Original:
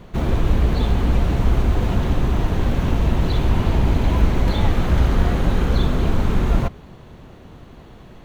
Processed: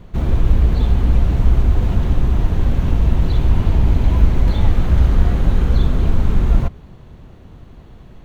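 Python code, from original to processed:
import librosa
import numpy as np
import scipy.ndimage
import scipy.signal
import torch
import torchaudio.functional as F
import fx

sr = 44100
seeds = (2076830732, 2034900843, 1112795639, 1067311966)

y = fx.low_shelf(x, sr, hz=150.0, db=9.5)
y = y * librosa.db_to_amplitude(-4.0)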